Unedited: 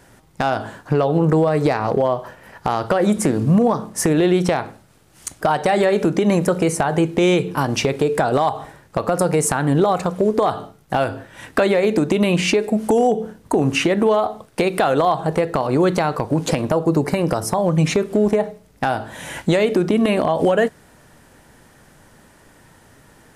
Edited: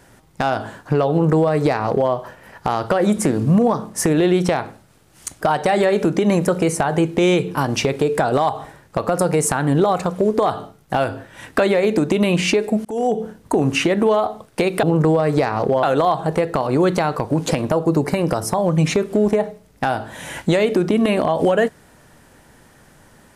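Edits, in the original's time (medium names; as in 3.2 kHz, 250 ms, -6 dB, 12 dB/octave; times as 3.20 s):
1.11–2.11 s: copy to 14.83 s
12.85–13.26 s: fade in equal-power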